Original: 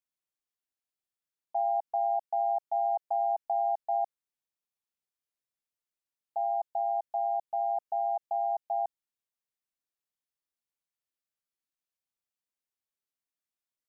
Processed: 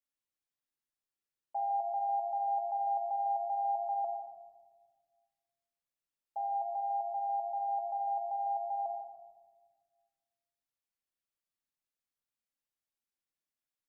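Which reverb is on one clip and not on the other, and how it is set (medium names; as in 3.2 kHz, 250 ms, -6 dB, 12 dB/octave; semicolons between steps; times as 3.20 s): simulated room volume 1300 m³, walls mixed, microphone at 2.3 m; trim -6.5 dB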